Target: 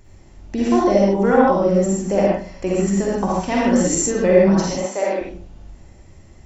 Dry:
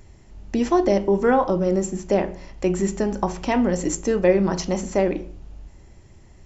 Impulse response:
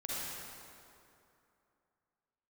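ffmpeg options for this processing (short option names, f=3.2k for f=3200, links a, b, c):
-filter_complex "[0:a]asettb=1/sr,asplit=3[a][b][c];[a]atrim=end=1.994[d];[b]atrim=start=1.99:end=2.9,asetpts=PTS-STARTPTS,afade=t=in:d=0.004:c=qsin,afade=t=out:st=0.906:d=0.004:c=qsin,bandreject=f=3.7k:w=10[e];[c]atrim=start=2.896[f];[d][e]acrossfade=d=0.004:c1=hsin:c2=qsin[g];[g][f]acrossfade=d=0.004:c1=qsin:c2=hsin,asettb=1/sr,asplit=3[h][i][j];[h]atrim=end=3.524[k];[i]atrim=start=3.52:end=3.99,asetpts=PTS-STARTPTS,afade=t=in:d=0.004:c=qsin,afade=t=out:st=0.466:d=0.004:c=qsin,highshelf=f=3.6k:g=7.5[l];[j]atrim=start=3.986[m];[k][l]acrossfade=d=0.004:c1=hsin:c2=qsin[n];[n][m]acrossfade=d=0.004:c1=qsin:c2=hsin,asettb=1/sr,asplit=3[o][p][q];[o]atrim=end=4.704[r];[p]atrim=start=4.7:end=5.21,asetpts=PTS-STARTPTS,afade=t=in:d=0.004:c=qsin,afade=t=out:st=0.506:d=0.004:c=qsin,highpass=480[s];[q]atrim=start=5.206[t];[r][s]acrossfade=d=0.004:c1=hsin:c2=qsin[u];[u][t]acrossfade=d=0.004:c1=qsin:c2=hsin[v];[1:a]atrim=start_sample=2205,afade=t=out:st=0.21:d=0.01,atrim=end_sample=9702[w];[v][w]afir=irnorm=-1:irlink=0,volume=3dB"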